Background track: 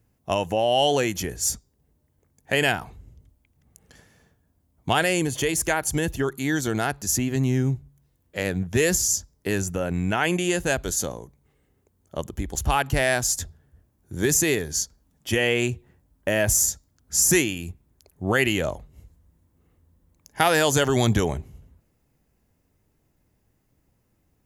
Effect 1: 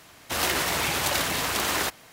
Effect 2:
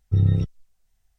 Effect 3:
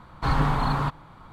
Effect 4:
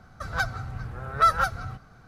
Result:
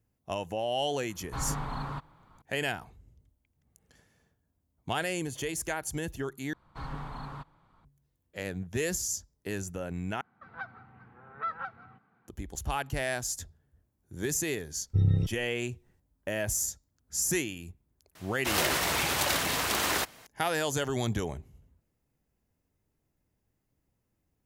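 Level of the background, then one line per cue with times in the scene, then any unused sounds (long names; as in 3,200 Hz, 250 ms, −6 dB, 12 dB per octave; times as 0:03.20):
background track −10 dB
0:01.10: mix in 3 −11.5 dB
0:06.53: overwrite with 3 −16.5 dB
0:10.21: overwrite with 4 −12 dB + loudspeaker in its box 210–2,700 Hz, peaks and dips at 220 Hz +5 dB, 600 Hz −10 dB, 870 Hz +5 dB, 1,300 Hz −3 dB
0:14.82: mix in 2 −5.5 dB
0:18.15: mix in 1 −2.5 dB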